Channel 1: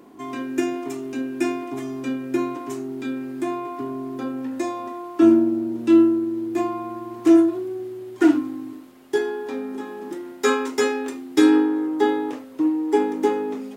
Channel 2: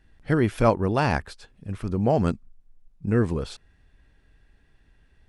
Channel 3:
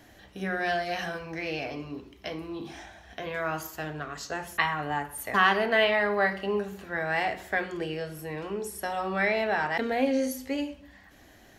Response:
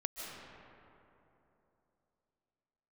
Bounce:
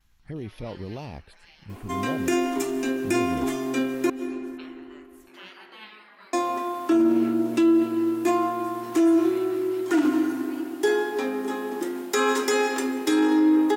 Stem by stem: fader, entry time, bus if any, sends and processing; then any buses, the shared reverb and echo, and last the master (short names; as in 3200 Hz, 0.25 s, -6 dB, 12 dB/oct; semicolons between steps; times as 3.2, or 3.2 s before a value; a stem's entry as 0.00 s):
+2.5 dB, 1.70 s, muted 4.1–6.33, send -7 dB, HPF 310 Hz 6 dB/oct; high shelf 7000 Hz +5.5 dB
-7.0 dB, 0.00 s, no send, envelope phaser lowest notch 470 Hz, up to 1500 Hz; limiter -19 dBFS, peak gain reduction 10 dB
-14.0 dB, 0.00 s, send -10 dB, spectral gate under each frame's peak -15 dB weak; HPF 180 Hz 24 dB/oct; gate with hold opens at -54 dBFS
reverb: on, RT60 3.1 s, pre-delay 0.11 s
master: limiter -13 dBFS, peak gain reduction 11 dB